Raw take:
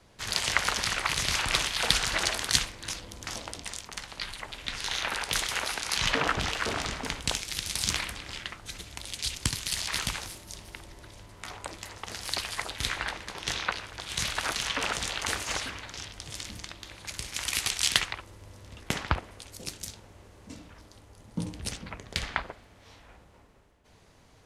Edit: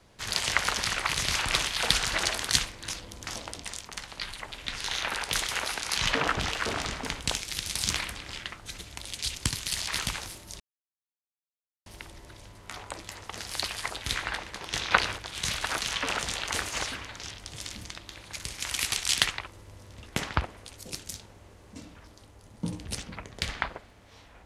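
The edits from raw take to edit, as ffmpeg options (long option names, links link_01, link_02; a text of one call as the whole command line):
ffmpeg -i in.wav -filter_complex "[0:a]asplit=4[link_01][link_02][link_03][link_04];[link_01]atrim=end=10.6,asetpts=PTS-STARTPTS,afade=type=out:start_time=10.596:duration=0.004:curve=hsin,apad=pad_dur=1.26[link_05];[link_02]atrim=start=10.6:end=13.652,asetpts=PTS-STARTPTS,afade=type=in:duration=0.004:curve=hsin[link_06];[link_03]atrim=start=13.648:end=13.922,asetpts=PTS-STARTPTS,volume=8.5dB[link_07];[link_04]atrim=start=13.918[link_08];[link_05][link_06]concat=n=2:v=0:a=1[link_09];[link_09][link_07]acrossfade=duration=0.004:curve1=hsin:curve2=hsin[link_10];[link_10][link_08]acrossfade=duration=0.004:curve1=hsin:curve2=hsin" out.wav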